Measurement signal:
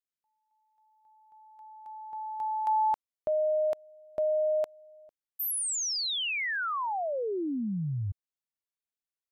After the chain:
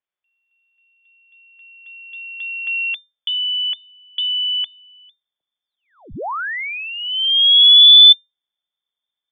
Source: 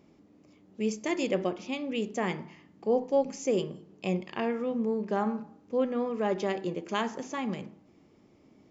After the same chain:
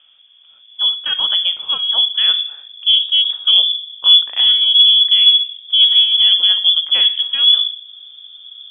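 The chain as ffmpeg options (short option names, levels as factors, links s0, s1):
-af "asubboost=boost=12:cutoff=240,acontrast=85,lowpass=f=3100:t=q:w=0.5098,lowpass=f=3100:t=q:w=0.6013,lowpass=f=3100:t=q:w=0.9,lowpass=f=3100:t=q:w=2.563,afreqshift=-3600,volume=1.12"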